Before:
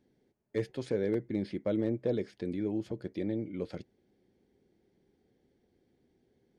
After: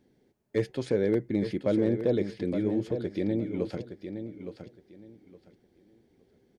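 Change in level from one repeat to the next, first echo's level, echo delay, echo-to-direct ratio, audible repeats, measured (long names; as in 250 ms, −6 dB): −13.0 dB, −9.0 dB, 865 ms, −9.0 dB, 2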